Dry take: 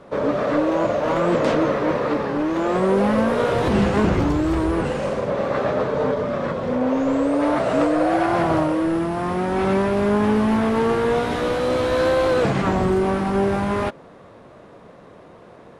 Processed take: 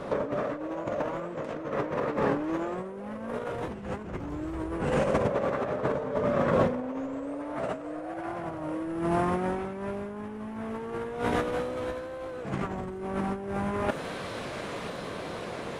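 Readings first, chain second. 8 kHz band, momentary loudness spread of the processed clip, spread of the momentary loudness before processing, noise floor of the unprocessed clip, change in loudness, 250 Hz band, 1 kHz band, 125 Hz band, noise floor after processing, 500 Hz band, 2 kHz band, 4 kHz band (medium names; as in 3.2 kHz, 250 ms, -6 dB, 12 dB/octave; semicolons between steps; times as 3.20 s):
no reading, 10 LU, 5 LU, -45 dBFS, -11.0 dB, -12.0 dB, -10.0 dB, -10.0 dB, -38 dBFS, -10.5 dB, -10.0 dB, -11.0 dB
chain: feedback echo behind a high-pass 996 ms, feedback 71%, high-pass 2.1 kHz, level -16.5 dB; dynamic bell 4.3 kHz, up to -7 dB, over -50 dBFS, Q 1.6; compressor with a negative ratio -27 dBFS, ratio -0.5; trim -1.5 dB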